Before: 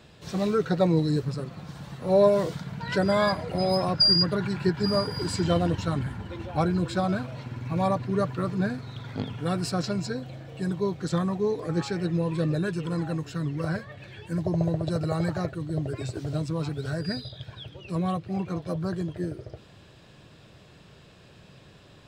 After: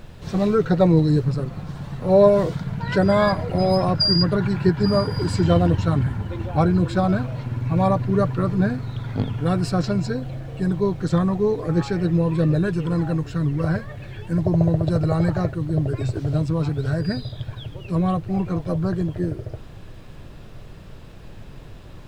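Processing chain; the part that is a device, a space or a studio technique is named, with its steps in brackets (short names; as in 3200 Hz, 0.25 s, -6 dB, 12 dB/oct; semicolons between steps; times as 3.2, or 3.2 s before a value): car interior (bell 100 Hz +6 dB 0.97 oct; high shelf 2700 Hz -7.5 dB; brown noise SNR 19 dB); gain +5.5 dB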